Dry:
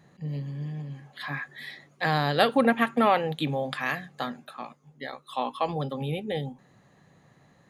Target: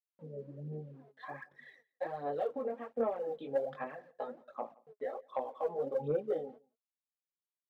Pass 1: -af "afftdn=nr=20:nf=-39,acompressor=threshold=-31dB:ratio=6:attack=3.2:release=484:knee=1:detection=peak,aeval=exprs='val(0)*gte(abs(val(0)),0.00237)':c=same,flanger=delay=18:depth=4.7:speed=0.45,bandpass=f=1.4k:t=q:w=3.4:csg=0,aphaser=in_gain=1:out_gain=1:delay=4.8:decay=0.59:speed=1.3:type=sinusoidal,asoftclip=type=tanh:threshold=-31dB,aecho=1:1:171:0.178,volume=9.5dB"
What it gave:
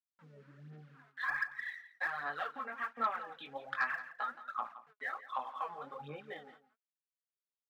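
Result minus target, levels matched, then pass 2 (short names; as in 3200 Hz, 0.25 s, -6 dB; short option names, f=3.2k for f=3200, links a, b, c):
500 Hz band -14.5 dB; echo-to-direct +11 dB
-af "afftdn=nr=20:nf=-39,acompressor=threshold=-31dB:ratio=6:attack=3.2:release=484:knee=1:detection=peak,aeval=exprs='val(0)*gte(abs(val(0)),0.00237)':c=same,flanger=delay=18:depth=4.7:speed=0.45,bandpass=f=510:t=q:w=3.4:csg=0,aphaser=in_gain=1:out_gain=1:delay=4.8:decay=0.59:speed=1.3:type=sinusoidal,asoftclip=type=tanh:threshold=-31dB,aecho=1:1:171:0.0501,volume=9.5dB"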